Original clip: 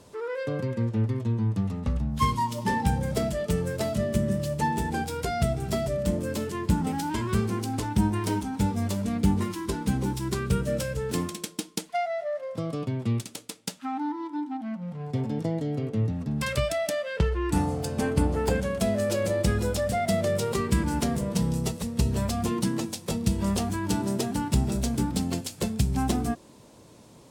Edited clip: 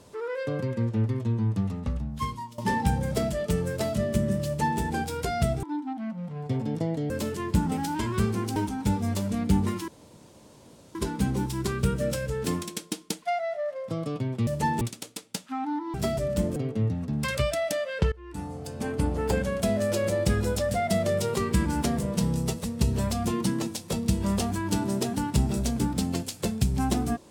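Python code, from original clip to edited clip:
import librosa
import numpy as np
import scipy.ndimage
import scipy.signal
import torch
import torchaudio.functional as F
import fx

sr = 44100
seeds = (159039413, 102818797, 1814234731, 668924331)

y = fx.edit(x, sr, fx.fade_out_to(start_s=1.64, length_s=0.94, floor_db=-17.0),
    fx.duplicate(start_s=4.46, length_s=0.34, to_s=13.14),
    fx.swap(start_s=5.63, length_s=0.62, other_s=14.27, other_length_s=1.47),
    fx.cut(start_s=7.71, length_s=0.59),
    fx.insert_room_tone(at_s=9.62, length_s=1.07),
    fx.fade_in_from(start_s=17.3, length_s=1.32, floor_db=-22.0), tone=tone)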